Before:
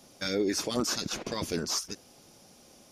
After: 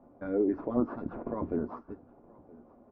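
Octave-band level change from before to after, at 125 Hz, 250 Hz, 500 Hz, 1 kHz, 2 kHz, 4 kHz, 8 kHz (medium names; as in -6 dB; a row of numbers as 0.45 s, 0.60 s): -2.5 dB, +2.0 dB, +0.5 dB, -2.0 dB, -13.0 dB, under -40 dB, under -40 dB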